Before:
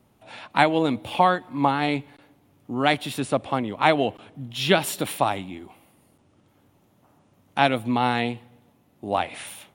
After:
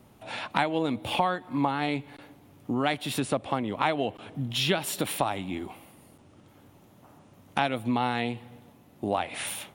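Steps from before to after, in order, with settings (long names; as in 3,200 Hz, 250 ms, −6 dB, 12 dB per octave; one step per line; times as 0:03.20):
downward compressor 3 to 1, threshold −32 dBFS, peak gain reduction 15 dB
level +5.5 dB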